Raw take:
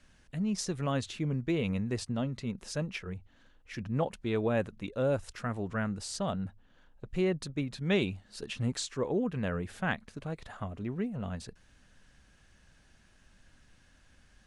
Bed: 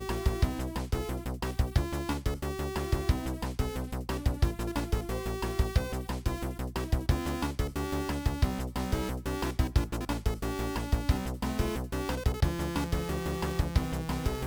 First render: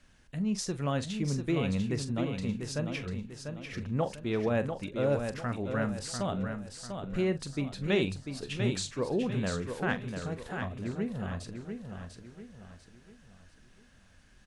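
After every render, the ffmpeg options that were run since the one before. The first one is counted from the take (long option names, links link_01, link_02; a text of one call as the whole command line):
ffmpeg -i in.wav -filter_complex "[0:a]asplit=2[link_01][link_02];[link_02]adelay=42,volume=-13dB[link_03];[link_01][link_03]amix=inputs=2:normalize=0,aecho=1:1:695|1390|2085|2780|3475:0.473|0.185|0.072|0.0281|0.0109" out.wav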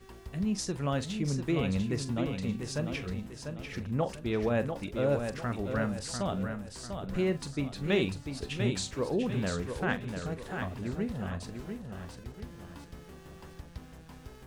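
ffmpeg -i in.wav -i bed.wav -filter_complex "[1:a]volume=-17.5dB[link_01];[0:a][link_01]amix=inputs=2:normalize=0" out.wav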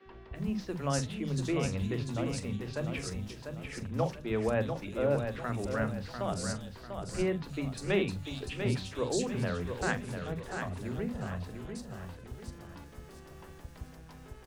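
ffmpeg -i in.wav -filter_complex "[0:a]acrossover=split=230|3700[link_01][link_02][link_03];[link_01]adelay=50[link_04];[link_03]adelay=350[link_05];[link_04][link_02][link_05]amix=inputs=3:normalize=0" out.wav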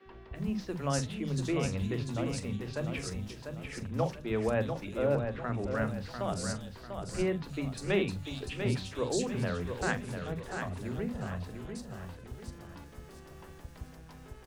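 ffmpeg -i in.wav -filter_complex "[0:a]asettb=1/sr,asplit=3[link_01][link_02][link_03];[link_01]atrim=end=5.154[link_04];[link_02]atrim=start=5.15:end=5.75,asetpts=PTS-STARTPTS,afade=type=in:duration=0.004:curve=qsin,afade=type=out:start_time=0.596:duration=0.004:curve=qsin,aemphasis=mode=reproduction:type=75fm[link_05];[link_03]atrim=start=5.746[link_06];[link_04][link_05]acrossfade=duration=0.004:curve1=hsin:curve2=qsin[link_07];[link_07][link_06]acrossfade=duration=0.004:curve1=qsin:curve2=hsin" out.wav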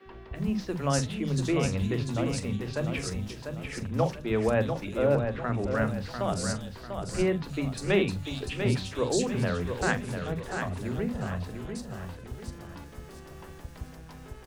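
ffmpeg -i in.wav -af "volume=4.5dB" out.wav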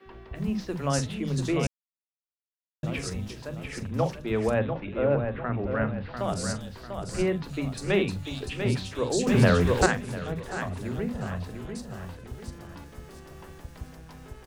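ffmpeg -i in.wav -filter_complex "[0:a]asettb=1/sr,asplit=3[link_01][link_02][link_03];[link_01]atrim=end=4.594[link_04];[link_02]atrim=start=4.59:end=6.17,asetpts=PTS-STARTPTS,afade=type=in:duration=0.004:curve=qsin,afade=type=out:start_time=1.576:duration=0.004:curve=qsin,lowpass=frequency=3100:width=0.5412,lowpass=frequency=3100:width=1.3066[link_05];[link_03]atrim=start=6.166[link_06];[link_04][link_05]acrossfade=duration=0.004:curve1=hsin:curve2=qsin[link_07];[link_07][link_06]acrossfade=duration=0.004:curve1=qsin:curve2=hsin,asplit=5[link_08][link_09][link_10][link_11][link_12];[link_08]atrim=end=1.67,asetpts=PTS-STARTPTS,afade=type=out:start_time=1.666:duration=0.004:curve=hsin[link_13];[link_09]atrim=start=1.67:end=2.83,asetpts=PTS-STARTPTS,volume=0[link_14];[link_10]atrim=start=2.83:end=9.272,asetpts=PTS-STARTPTS,afade=type=in:duration=0.004:curve=hsin[link_15];[link_11]atrim=start=9.268:end=9.862,asetpts=PTS-STARTPTS,volume=9dB[link_16];[link_12]atrim=start=9.858[link_17];[link_13][link_14][link_15]concat=n=3:v=0:a=1[link_18];[link_18][link_16]acrossfade=duration=0.004:curve1=hsin:curve2=hsin[link_19];[link_19][link_17]acrossfade=duration=0.004:curve1=hsin:curve2=hsin" out.wav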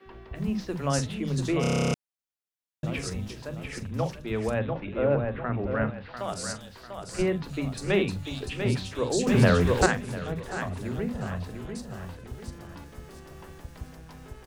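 ffmpeg -i in.wav -filter_complex "[0:a]asettb=1/sr,asplit=3[link_01][link_02][link_03];[link_01]atrim=end=3.784[link_04];[link_02]atrim=start=3.78:end=4.68,asetpts=PTS-STARTPTS,afade=type=in:duration=0.004:curve=qsin,afade=type=out:start_time=0.896:duration=0.004:curve=qsin,equalizer=frequency=540:width=0.32:gain=-3.5[link_05];[link_03]atrim=start=4.676[link_06];[link_04][link_05]acrossfade=duration=0.004:curve1=hsin:curve2=qsin[link_07];[link_07][link_06]acrossfade=duration=0.004:curve1=qsin:curve2=hsin,asettb=1/sr,asplit=3[link_08][link_09][link_10];[link_08]atrim=end=5.904[link_11];[link_09]atrim=start=5.9:end=7.19,asetpts=PTS-STARTPTS,afade=type=in:duration=0.004:curve=qsin,afade=type=out:start_time=1.286:duration=0.004:curve=qsin,lowshelf=frequency=450:gain=-9[link_12];[link_10]atrim=start=7.186[link_13];[link_11][link_12]acrossfade=duration=0.004:curve1=hsin:curve2=qsin[link_14];[link_14][link_13]acrossfade=duration=0.004:curve1=qsin:curve2=hsin,asplit=12[link_15][link_16][link_17][link_18][link_19][link_20][link_21][link_22][link_23][link_24][link_25][link_26];[link_15]atrim=end=1.642[link_27];[link_16]atrim=start=1.608:end=1.642[link_28];[link_17]atrim=start=1.608:end=1.642[link_29];[link_18]atrim=start=1.608:end=1.642[link_30];[link_19]atrim=start=1.608:end=1.642[link_31];[link_20]atrim=start=1.608:end=1.642[link_32];[link_21]atrim=start=1.608:end=1.642[link_33];[link_22]atrim=start=1.608:end=1.642[link_34];[link_23]atrim=start=1.608:end=1.642[link_35];[link_24]atrim=start=1.608:end=1.642[link_36];[link_25]atrim=start=1.608:end=1.642[link_37];[link_26]atrim=start=1.938[link_38];[link_27][link_28]acrossfade=duration=0.004:curve1=hsin:curve2=hsin[link_39];[link_39][link_29]acrossfade=duration=0.004:curve1=hsin:curve2=hsin[link_40];[link_40][link_30]acrossfade=duration=0.004:curve1=hsin:curve2=hsin[link_41];[link_41][link_31]acrossfade=duration=0.004:curve1=hsin:curve2=hsin[link_42];[link_42][link_32]acrossfade=duration=0.004:curve1=hsin:curve2=hsin[link_43];[link_43][link_33]acrossfade=duration=0.004:curve1=hsin:curve2=hsin[link_44];[link_44][link_34]acrossfade=duration=0.004:curve1=hsin:curve2=hsin[link_45];[link_45][link_35]acrossfade=duration=0.004:curve1=hsin:curve2=hsin[link_46];[link_46][link_36]acrossfade=duration=0.004:curve1=hsin:curve2=hsin[link_47];[link_47][link_37]acrossfade=duration=0.004:curve1=hsin:curve2=hsin[link_48];[link_48][link_38]acrossfade=duration=0.004:curve1=hsin:curve2=hsin" out.wav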